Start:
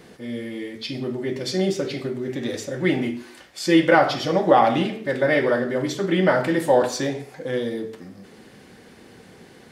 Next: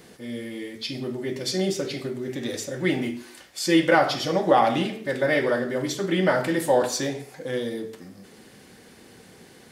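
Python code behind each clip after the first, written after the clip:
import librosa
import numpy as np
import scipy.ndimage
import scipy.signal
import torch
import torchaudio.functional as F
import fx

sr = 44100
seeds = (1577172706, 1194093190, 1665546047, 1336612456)

y = fx.high_shelf(x, sr, hz=5100.0, db=9.0)
y = F.gain(torch.from_numpy(y), -3.0).numpy()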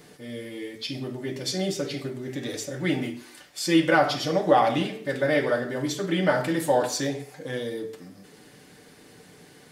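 y = x + 0.44 * np.pad(x, (int(6.8 * sr / 1000.0), 0))[:len(x)]
y = F.gain(torch.from_numpy(y), -2.0).numpy()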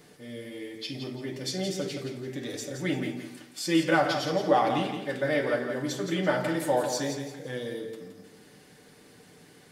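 y = fx.echo_feedback(x, sr, ms=170, feedback_pct=32, wet_db=-8)
y = F.gain(torch.from_numpy(y), -4.0).numpy()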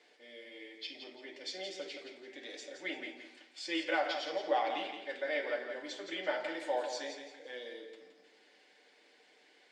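y = fx.cabinet(x, sr, low_hz=370.0, low_slope=24, high_hz=6500.0, hz=(420.0, 1200.0, 2200.0, 3200.0, 6000.0), db=(-6, -7, 5, 3, -5))
y = F.gain(torch.from_numpy(y), -7.0).numpy()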